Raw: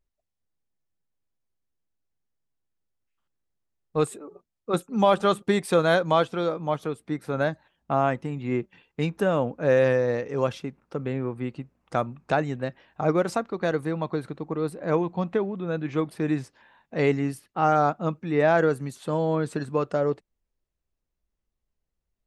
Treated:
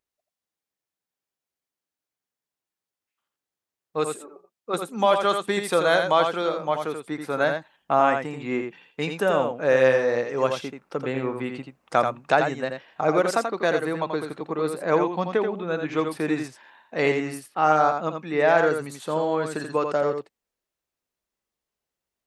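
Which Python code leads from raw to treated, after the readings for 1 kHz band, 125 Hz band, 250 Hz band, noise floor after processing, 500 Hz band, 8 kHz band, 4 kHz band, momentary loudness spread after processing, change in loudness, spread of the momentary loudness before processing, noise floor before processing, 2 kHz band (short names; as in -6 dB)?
+3.5 dB, -6.0 dB, -1.5 dB, under -85 dBFS, +2.0 dB, +4.5 dB, +4.5 dB, 12 LU, +2.0 dB, 11 LU, -83 dBFS, +4.5 dB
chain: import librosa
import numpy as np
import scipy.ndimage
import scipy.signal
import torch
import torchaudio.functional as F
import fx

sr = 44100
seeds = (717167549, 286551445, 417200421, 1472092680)

p1 = fx.highpass(x, sr, hz=550.0, slope=6)
p2 = fx.rider(p1, sr, range_db=10, speed_s=2.0)
p3 = p1 + F.gain(torch.from_numpy(p2), 0.5).numpy()
p4 = p3 + 10.0 ** (-6.0 / 20.0) * np.pad(p3, (int(84 * sr / 1000.0), 0))[:len(p3)]
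y = F.gain(torch.from_numpy(p4), -2.5).numpy()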